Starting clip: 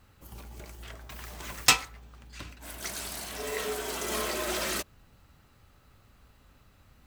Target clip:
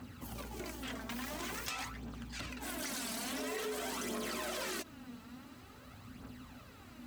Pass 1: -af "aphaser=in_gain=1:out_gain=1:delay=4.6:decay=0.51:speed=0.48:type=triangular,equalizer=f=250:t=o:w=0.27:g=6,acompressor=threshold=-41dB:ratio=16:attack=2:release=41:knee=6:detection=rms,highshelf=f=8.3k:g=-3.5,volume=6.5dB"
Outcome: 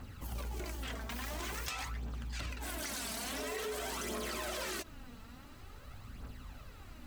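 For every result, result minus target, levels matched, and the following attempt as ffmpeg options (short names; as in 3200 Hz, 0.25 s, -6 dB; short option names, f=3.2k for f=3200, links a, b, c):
125 Hz band +5.5 dB; 250 Hz band -4.0 dB
-af "aphaser=in_gain=1:out_gain=1:delay=4.6:decay=0.51:speed=0.48:type=triangular,equalizer=f=250:t=o:w=0.27:g=6,acompressor=threshold=-41dB:ratio=16:attack=2:release=41:knee=6:detection=rms,highpass=100,highshelf=f=8.3k:g=-3.5,volume=6.5dB"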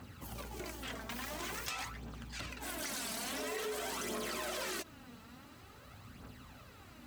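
250 Hz band -4.0 dB
-af "aphaser=in_gain=1:out_gain=1:delay=4.6:decay=0.51:speed=0.48:type=triangular,equalizer=f=250:t=o:w=0.27:g=14,acompressor=threshold=-41dB:ratio=16:attack=2:release=41:knee=6:detection=rms,highpass=100,highshelf=f=8.3k:g=-3.5,volume=6.5dB"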